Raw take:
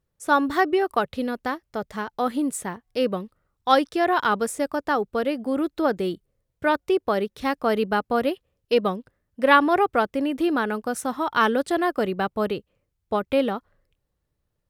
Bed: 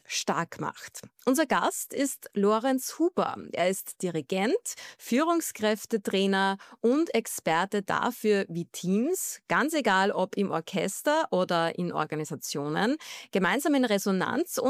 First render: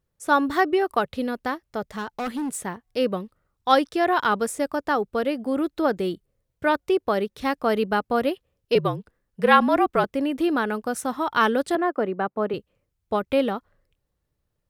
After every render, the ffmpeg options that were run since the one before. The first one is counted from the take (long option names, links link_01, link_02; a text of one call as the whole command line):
ffmpeg -i in.wav -filter_complex "[0:a]asettb=1/sr,asplit=3[link_01][link_02][link_03];[link_01]atrim=end=1.894[link_04];[link_02]atrim=start=1.89:end=2.66,asetpts=PTS-STARTPTS,afade=type=in:duration=0.004:curve=qsin,afade=type=out:start_time=0.766:duration=0.004:curve=qsin,asoftclip=type=hard:threshold=-25dB[link_05];[link_03]atrim=start=2.656[link_06];[link_04][link_05]acrossfade=duration=0.004:curve1=hsin:curve2=qsin[link_07];[link_07][link_06]acrossfade=duration=0.004:curve1=qsin:curve2=hsin,asettb=1/sr,asplit=3[link_08][link_09][link_10];[link_08]atrim=end=8.754[link_11];[link_09]atrim=start=8.75:end=10.04,asetpts=PTS-STARTPTS,afade=type=in:duration=0.004:curve=qsin,afade=type=out:start_time=1.286:duration=0.004:curve=qsin,afreqshift=-50[link_12];[link_10]atrim=start=10.036[link_13];[link_11][link_12]acrossfade=duration=0.004:curve1=hsin:curve2=qsin[link_14];[link_14][link_13]acrossfade=duration=0.004:curve1=qsin:curve2=hsin,asettb=1/sr,asplit=3[link_15][link_16][link_17];[link_15]atrim=end=11.754[link_18];[link_16]atrim=start=11.75:end=12.54,asetpts=PTS-STARTPTS,afade=type=in:duration=0.004:curve=qsin,afade=type=out:start_time=0.786:duration=0.004:curve=qsin,acrossover=split=160 2100:gain=0.0708 1 0.141[link_19][link_20][link_21];[link_19][link_20][link_21]amix=inputs=3:normalize=0[link_22];[link_17]atrim=start=12.536[link_23];[link_18][link_22]acrossfade=duration=0.004:curve1=hsin:curve2=qsin[link_24];[link_24][link_23]acrossfade=duration=0.004:curve1=qsin:curve2=hsin" out.wav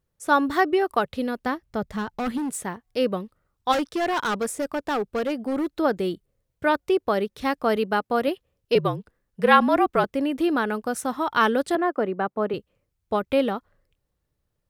ffmpeg -i in.wav -filter_complex "[0:a]asettb=1/sr,asplit=3[link_01][link_02][link_03];[link_01]atrim=end=1.464[link_04];[link_02]atrim=start=1.46:end=2.38,asetpts=PTS-STARTPTS,afade=type=in:duration=0.004:curve=qsin,afade=type=out:start_time=0.916:duration=0.004:curve=qsin,bass=frequency=250:gain=8,treble=frequency=4000:gain=-2[link_05];[link_03]atrim=start=2.376[link_06];[link_04][link_05]acrossfade=duration=0.004:curve1=hsin:curve2=qsin[link_07];[link_07][link_06]acrossfade=duration=0.004:curve1=qsin:curve2=hsin,asplit=3[link_08][link_09][link_10];[link_08]afade=type=out:start_time=3.71:duration=0.02[link_11];[link_09]volume=21dB,asoftclip=hard,volume=-21dB,afade=type=in:start_time=3.71:duration=0.02,afade=type=out:start_time=5.68:duration=0.02[link_12];[link_10]afade=type=in:start_time=5.68:duration=0.02[link_13];[link_11][link_12][link_13]amix=inputs=3:normalize=0,asettb=1/sr,asplit=3[link_14][link_15][link_16];[link_14]atrim=end=7.764[link_17];[link_15]atrim=start=7.76:end=8.28,asetpts=PTS-STARTPTS,afade=type=in:duration=0.004:curve=qsin,afade=type=out:start_time=0.516:duration=0.004:curve=qsin,highpass=frequency=160:poles=1[link_18];[link_16]atrim=start=8.276[link_19];[link_17][link_18]acrossfade=duration=0.004:curve1=hsin:curve2=qsin[link_20];[link_20][link_19]acrossfade=duration=0.004:curve1=qsin:curve2=hsin" out.wav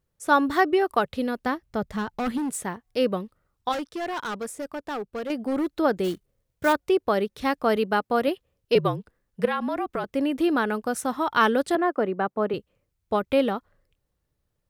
ffmpeg -i in.wav -filter_complex "[0:a]asplit=3[link_01][link_02][link_03];[link_01]afade=type=out:start_time=6.03:duration=0.02[link_04];[link_02]acrusher=bits=4:mode=log:mix=0:aa=0.000001,afade=type=in:start_time=6.03:duration=0.02,afade=type=out:start_time=6.72:duration=0.02[link_05];[link_03]afade=type=in:start_time=6.72:duration=0.02[link_06];[link_04][link_05][link_06]amix=inputs=3:normalize=0,asettb=1/sr,asplit=3[link_07][link_08][link_09];[link_07]atrim=end=9.454[link_10];[link_08]atrim=start=9.45:end=10.16,asetpts=PTS-STARTPTS,afade=type=in:duration=0.004:curve=qsin,afade=type=out:start_time=0.706:duration=0.004:curve=qsin,acompressor=threshold=-26dB:ratio=3:attack=3.2:release=140:knee=1:detection=peak[link_11];[link_09]atrim=start=10.156[link_12];[link_10][link_11]acrossfade=duration=0.004:curve1=hsin:curve2=qsin[link_13];[link_13][link_12]acrossfade=duration=0.004:curve1=qsin:curve2=hsin,asplit=3[link_14][link_15][link_16];[link_14]atrim=end=3.692[link_17];[link_15]atrim=start=3.688:end=5.302,asetpts=PTS-STARTPTS,volume=-6dB[link_18];[link_16]atrim=start=5.298[link_19];[link_17][link_18]acrossfade=duration=0.004:curve1=hsin:curve2=hsin[link_20];[link_20][link_19]acrossfade=duration=0.004:curve1=hsin:curve2=hsin" out.wav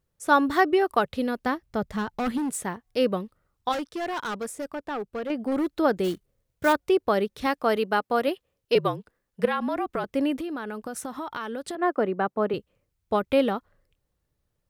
ffmpeg -i in.wav -filter_complex "[0:a]asettb=1/sr,asplit=3[link_01][link_02][link_03];[link_01]atrim=end=4.704[link_04];[link_02]atrim=start=4.7:end=5.52,asetpts=PTS-STARTPTS,afade=type=in:duration=0.004:curve=qsin,afade=type=out:start_time=0.816:duration=0.004:curve=qsin,acrossover=split=3600[link_05][link_06];[link_06]acompressor=threshold=-57dB:ratio=4:attack=1:release=60[link_07];[link_05][link_07]amix=inputs=2:normalize=0[link_08];[link_03]atrim=start=5.516[link_09];[link_04][link_08]acrossfade=duration=0.004:curve1=hsin:curve2=qsin[link_10];[link_10][link_09]acrossfade=duration=0.004:curve1=qsin:curve2=hsin,asettb=1/sr,asplit=3[link_11][link_12][link_13];[link_11]atrim=end=7.464[link_14];[link_12]atrim=start=7.46:end=9.43,asetpts=PTS-STARTPTS,afade=type=in:duration=0.004:curve=qsin,afade=type=out:start_time=1.966:duration=0.004:curve=qsin,lowshelf=frequency=180:gain=-8.5[link_15];[link_13]atrim=start=9.426[link_16];[link_14][link_15]acrossfade=duration=0.004:curve1=hsin:curve2=qsin[link_17];[link_17][link_16]acrossfade=duration=0.004:curve1=qsin:curve2=hsin,asplit=3[link_18][link_19][link_20];[link_18]afade=type=out:start_time=10.38:duration=0.02[link_21];[link_19]acompressor=threshold=-30dB:ratio=6:attack=3.2:release=140:knee=1:detection=peak,afade=type=in:start_time=10.38:duration=0.02,afade=type=out:start_time=11.81:duration=0.02[link_22];[link_20]afade=type=in:start_time=11.81:duration=0.02[link_23];[link_21][link_22][link_23]amix=inputs=3:normalize=0" out.wav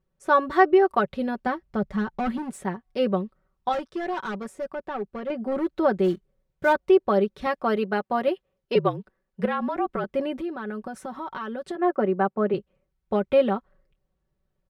ffmpeg -i in.wav -af "lowpass=frequency=1700:poles=1,aecho=1:1:5.3:0.71" out.wav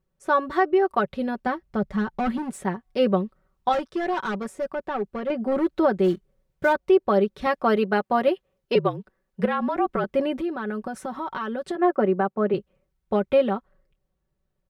ffmpeg -i in.wav -af "dynaudnorm=framelen=380:gausssize=11:maxgain=3.5dB,alimiter=limit=-10dB:level=0:latency=1:release=450" out.wav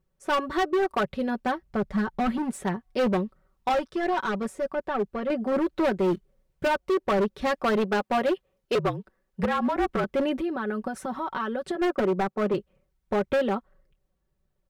ffmpeg -i in.wav -af "aphaser=in_gain=1:out_gain=1:delay=4.5:decay=0.25:speed=1.8:type=triangular,asoftclip=type=hard:threshold=-20dB" out.wav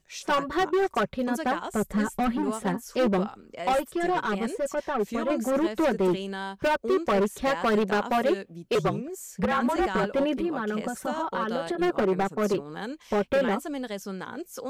ffmpeg -i in.wav -i bed.wav -filter_complex "[1:a]volume=-9dB[link_01];[0:a][link_01]amix=inputs=2:normalize=0" out.wav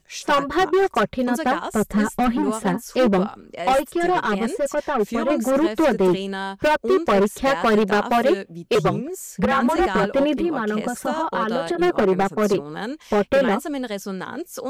ffmpeg -i in.wav -af "volume=6dB" out.wav